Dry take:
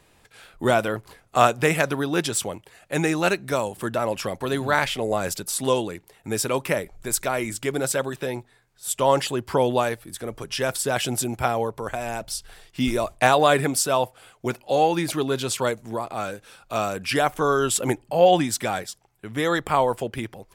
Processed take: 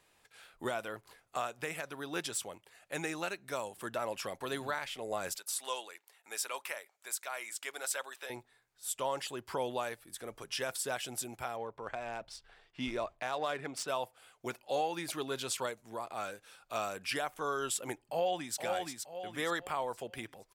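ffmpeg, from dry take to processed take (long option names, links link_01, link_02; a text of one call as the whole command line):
ffmpeg -i in.wav -filter_complex "[0:a]asettb=1/sr,asplit=3[link_01][link_02][link_03];[link_01]atrim=end=5.364[link_04];[link_02]atrim=start=5.36:end=8.3,asetpts=PTS-STARTPTS,afade=type=in:duration=0.004:curve=qsin,afade=type=out:start_time=2.936:duration=0.004:curve=qsin,highpass=760[link_05];[link_03]atrim=start=8.296[link_06];[link_04][link_05]acrossfade=duration=0.004:curve1=hsin:curve2=qsin[link_07];[link_07][link_06]acrossfade=duration=0.004:curve1=qsin:curve2=hsin,asettb=1/sr,asplit=3[link_08][link_09][link_10];[link_08]atrim=end=11.564[link_11];[link_09]atrim=start=11.56:end=13.88,asetpts=PTS-STARTPTS,afade=type=in:duration=0.004:curve=qsin,afade=type=out:start_time=2.316:duration=0.004:curve=qsin,adynamicsmooth=sensitivity=1.5:basefreq=3200[link_12];[link_10]atrim=start=13.876[link_13];[link_11][link_12]acrossfade=duration=0.004:curve1=hsin:curve2=qsin[link_14];[link_14][link_13]acrossfade=duration=0.004:curve1=qsin:curve2=hsin,asplit=2[link_15][link_16];[link_16]afade=type=in:start_time=18.07:duration=0.01,afade=type=out:start_time=18.58:duration=0.01,aecho=0:1:470|940|1410|1880:0.446684|0.156339|0.0547187|0.0191516[link_17];[link_15][link_17]amix=inputs=2:normalize=0,lowshelf=frequency=360:gain=-11,alimiter=limit=-15dB:level=0:latency=1:release=434,volume=-8dB" out.wav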